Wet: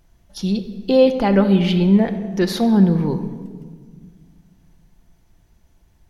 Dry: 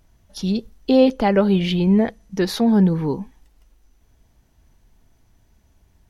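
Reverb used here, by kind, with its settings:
rectangular room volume 2,200 cubic metres, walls mixed, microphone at 0.84 metres

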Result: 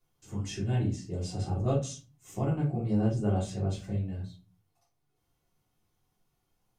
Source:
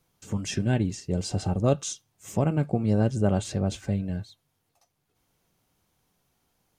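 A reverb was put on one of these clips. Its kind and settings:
rectangular room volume 150 cubic metres, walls furnished, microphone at 3.3 metres
level −14 dB

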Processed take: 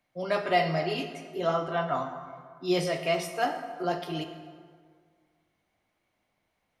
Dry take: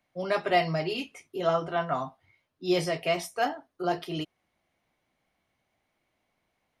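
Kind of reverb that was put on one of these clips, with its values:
dense smooth reverb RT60 1.9 s, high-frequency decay 0.6×, DRR 6 dB
level −1 dB

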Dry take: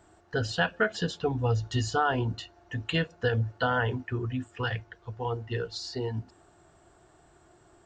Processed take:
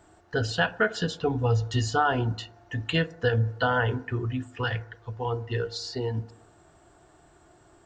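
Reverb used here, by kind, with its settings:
feedback delay network reverb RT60 0.79 s, low-frequency decay 0.9×, high-frequency decay 0.25×, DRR 15 dB
level +2 dB

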